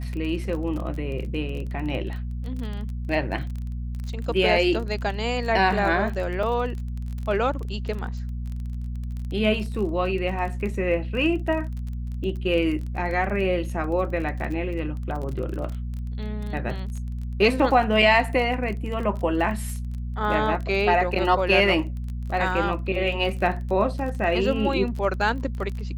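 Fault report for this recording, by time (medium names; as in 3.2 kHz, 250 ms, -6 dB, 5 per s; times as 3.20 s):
crackle 26 per s -31 dBFS
hum 60 Hz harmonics 4 -30 dBFS
6.43 s: dropout 3.4 ms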